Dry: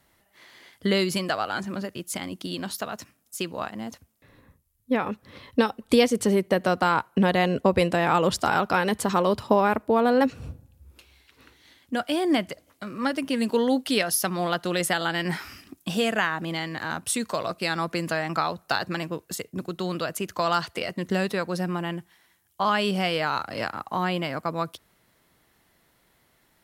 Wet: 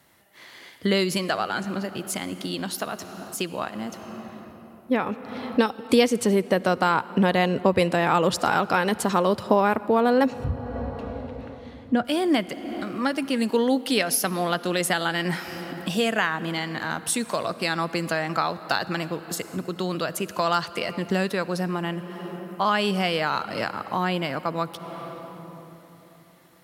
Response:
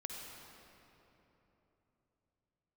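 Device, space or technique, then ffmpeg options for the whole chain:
ducked reverb: -filter_complex "[0:a]highpass=94,asettb=1/sr,asplit=3[link_01][link_02][link_03];[link_01]atrim=end=10.444[link_04];[link_02]atrim=start=10.44:end=12.05,asetpts=PTS-STARTPTS,afade=type=in:duration=0.004:curve=qsin,afade=type=out:start_time=1.606:duration=0.004:curve=qsin,aemphasis=mode=reproduction:type=riaa[link_05];[link_03]atrim=start=12.046[link_06];[link_04][link_05]acrossfade=duration=0.004:curve1=hsin:curve2=qsin[link_07];[link_07][link_06]acrossfade=duration=0.004:curve1=qsin:curve2=hsin,asplit=3[link_08][link_09][link_10];[1:a]atrim=start_sample=2205[link_11];[link_09][link_11]afir=irnorm=-1:irlink=0[link_12];[link_10]apad=whole_len=1174528[link_13];[link_12][link_13]sidechaincompress=threshold=-40dB:ratio=4:attack=28:release=306,volume=2dB[link_14];[link_08][link_14]amix=inputs=2:normalize=0"

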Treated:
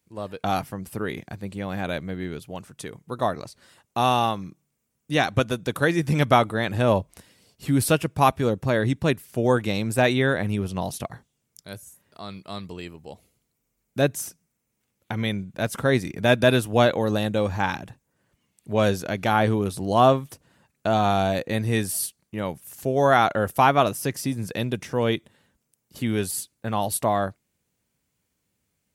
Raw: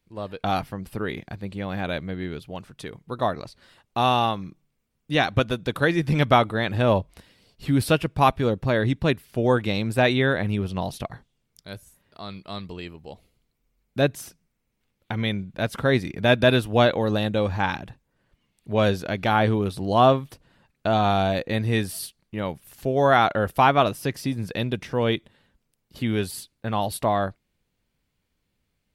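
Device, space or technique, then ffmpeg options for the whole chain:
budget condenser microphone: -af "highpass=76,highshelf=frequency=5300:width_type=q:width=1.5:gain=6.5"

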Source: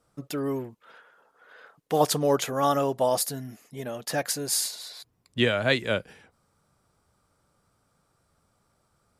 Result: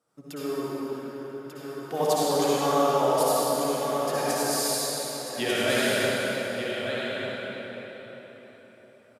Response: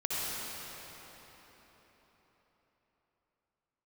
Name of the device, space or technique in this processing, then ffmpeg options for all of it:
cathedral: -filter_complex "[0:a]highpass=170,asettb=1/sr,asplit=3[link_01][link_02][link_03];[link_01]atrim=end=4.964[link_04];[link_02]atrim=start=4.96:end=5.4,asetpts=PTS-STARTPTS,afade=type=in:duration=0.004:curve=qsin,afade=type=out:start_time=0.436:duration=0.004:curve=qsin,deesser=1[link_05];[link_03]atrim=start=5.396[link_06];[link_04][link_05]acrossfade=duration=0.004:curve1=hsin:curve2=qsin[link_07];[link_07][link_06]acrossfade=duration=0.004:curve1=qsin:curve2=hsin[link_08];[1:a]atrim=start_sample=2205[link_09];[link_08][link_09]afir=irnorm=-1:irlink=0,aecho=1:1:1192:0.447,volume=-6dB"

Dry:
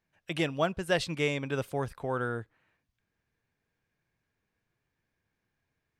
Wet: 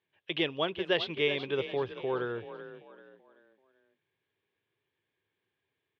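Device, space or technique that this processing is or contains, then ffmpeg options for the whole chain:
frequency-shifting delay pedal into a guitar cabinet: -filter_complex "[0:a]asplit=5[link_01][link_02][link_03][link_04][link_05];[link_02]adelay=385,afreqshift=33,volume=-12dB[link_06];[link_03]adelay=770,afreqshift=66,volume=-20.4dB[link_07];[link_04]adelay=1155,afreqshift=99,volume=-28.8dB[link_08];[link_05]adelay=1540,afreqshift=132,volume=-37.2dB[link_09];[link_01][link_06][link_07][link_08][link_09]amix=inputs=5:normalize=0,lowpass=6900,highpass=100,equalizer=frequency=100:width_type=q:width=4:gain=6,equalizer=frequency=210:width_type=q:width=4:gain=-5,equalizer=frequency=390:width_type=q:width=4:gain=10,equalizer=frequency=700:width_type=q:width=4:gain=-5,equalizer=frequency=1400:width_type=q:width=4:gain=-6,equalizer=frequency=3300:width_type=q:width=4:gain=9,lowpass=frequency=3800:width=0.5412,lowpass=frequency=3800:width=1.3066,lowshelf=frequency=300:gain=-9.5"

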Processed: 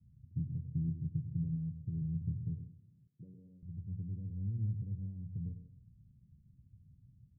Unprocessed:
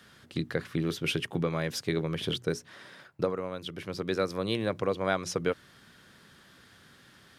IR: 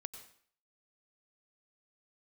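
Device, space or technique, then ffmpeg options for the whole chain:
club heard from the street: -filter_complex "[0:a]alimiter=limit=-20dB:level=0:latency=1,lowpass=frequency=130:width=0.5412,lowpass=frequency=130:width=1.3066[link_01];[1:a]atrim=start_sample=2205[link_02];[link_01][link_02]afir=irnorm=-1:irlink=0,asettb=1/sr,asplit=3[link_03][link_04][link_05];[link_03]atrim=end=3.074[link_06];[link_04]atrim=start=3.07:end=3.63,asetpts=PTS-STARTPTS,afade=type=in:duration=0.004:curve=qsin,afade=type=out:start_time=0.556:duration=0.004:curve=qsin,highpass=280[link_07];[link_05]atrim=start=3.626[link_08];[link_06][link_07]acrossfade=duration=0.004:curve1=hsin:curve2=qsin[link_09];[link_09][link_08]acrossfade=duration=0.004:curve1=qsin:curve2=hsin,volume=10.5dB"

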